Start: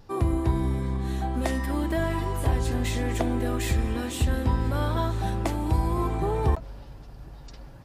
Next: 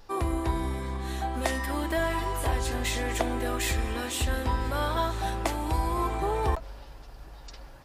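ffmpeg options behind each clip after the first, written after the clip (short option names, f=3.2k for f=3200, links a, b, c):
-af "equalizer=f=140:t=o:w=2.6:g=-13.5,volume=3.5dB"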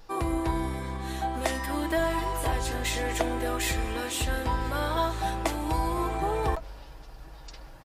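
-af "aecho=1:1:6.3:0.34"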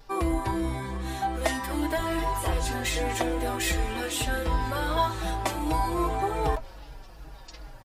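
-filter_complex "[0:a]asplit=2[a][b];[b]adelay=4.5,afreqshift=-2.6[c];[a][c]amix=inputs=2:normalize=1,volume=4dB"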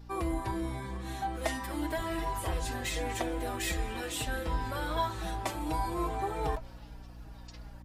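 -af "aeval=exprs='val(0)+0.00794*(sin(2*PI*60*n/s)+sin(2*PI*2*60*n/s)/2+sin(2*PI*3*60*n/s)/3+sin(2*PI*4*60*n/s)/4+sin(2*PI*5*60*n/s)/5)':c=same,volume=-6dB"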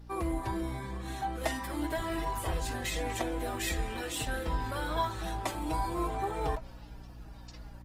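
-ar 48000 -c:a libopus -b:a 24k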